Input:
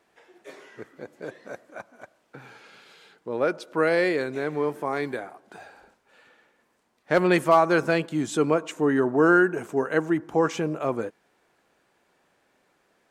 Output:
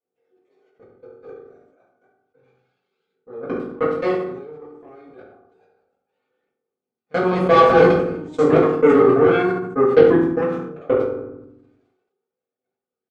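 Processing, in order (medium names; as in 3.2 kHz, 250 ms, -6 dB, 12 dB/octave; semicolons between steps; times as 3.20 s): 7.21–9.30 s: chunks repeated in reverse 114 ms, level -1 dB; peaking EQ 390 Hz +14.5 dB 0.46 oct; band-stop 1.7 kHz, Q 7.2; level held to a coarse grid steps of 15 dB; phaser 0.3 Hz, delay 3.3 ms, feedback 37%; Chebyshev shaper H 4 -28 dB, 7 -18 dB, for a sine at -4 dBFS; distance through air 100 m; speakerphone echo 100 ms, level -15 dB; reverberation RT60 0.60 s, pre-delay 3 ms, DRR -10 dB; decay stretcher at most 54 dB/s; trim -7 dB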